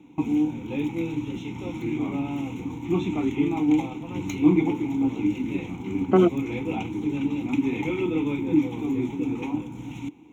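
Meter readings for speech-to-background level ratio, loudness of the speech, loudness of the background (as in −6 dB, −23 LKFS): 4.5 dB, −22.0 LKFS, −26.5 LKFS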